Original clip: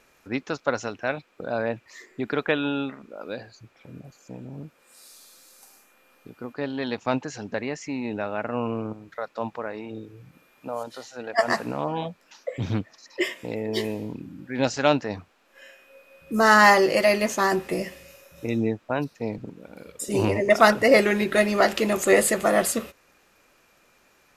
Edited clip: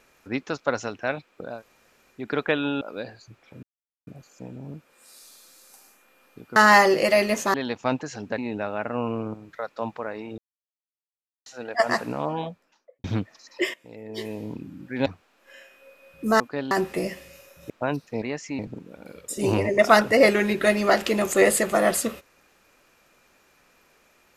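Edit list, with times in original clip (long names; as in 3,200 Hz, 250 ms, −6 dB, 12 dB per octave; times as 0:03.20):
0:01.51–0:02.21: fill with room tone, crossfade 0.24 s
0:02.81–0:03.14: remove
0:03.96: splice in silence 0.44 s
0:06.45–0:06.76: swap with 0:16.48–0:17.46
0:07.60–0:07.97: move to 0:19.30
0:09.97–0:11.05: silence
0:11.87–0:12.63: fade out and dull
0:13.33–0:14.12: fade in quadratic, from −14.5 dB
0:14.65–0:15.14: remove
0:18.45–0:18.78: remove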